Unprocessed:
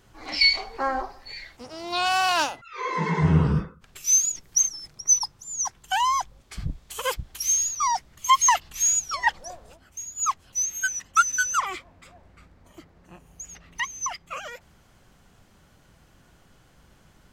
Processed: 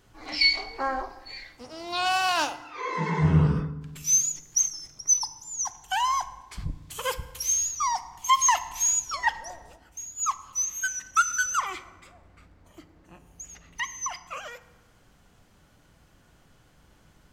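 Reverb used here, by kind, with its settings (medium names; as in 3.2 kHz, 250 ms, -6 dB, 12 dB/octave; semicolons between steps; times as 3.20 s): FDN reverb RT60 1.2 s, low-frequency decay 1.4×, high-frequency decay 0.65×, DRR 12 dB; trim -2.5 dB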